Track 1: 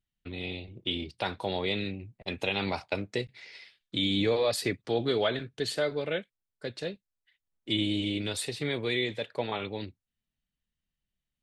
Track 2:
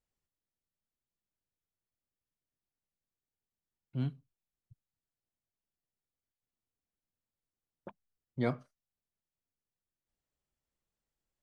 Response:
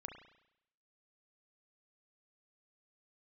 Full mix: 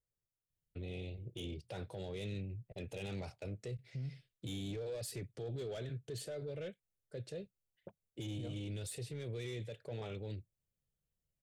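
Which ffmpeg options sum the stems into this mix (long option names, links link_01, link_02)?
-filter_complex "[0:a]asoftclip=type=tanh:threshold=-24.5dB,adynamicequalizer=threshold=0.00631:dfrequency=550:dqfactor=0.82:tfrequency=550:tqfactor=0.82:attack=5:release=100:ratio=0.375:range=3.5:mode=cutabove:tftype=bell,adelay=500,volume=-3.5dB[link_01];[1:a]acompressor=threshold=-31dB:ratio=6,volume=-4dB[link_02];[link_01][link_02]amix=inputs=2:normalize=0,equalizer=frequency=125:width_type=o:width=1:gain=8,equalizer=frequency=250:width_type=o:width=1:gain=-8,equalizer=frequency=500:width_type=o:width=1:gain=6,equalizer=frequency=1000:width_type=o:width=1:gain=-12,equalizer=frequency=2000:width_type=o:width=1:gain=-6,equalizer=frequency=4000:width_type=o:width=1:gain=-9,alimiter=level_in=11.5dB:limit=-24dB:level=0:latency=1:release=36,volume=-11.5dB"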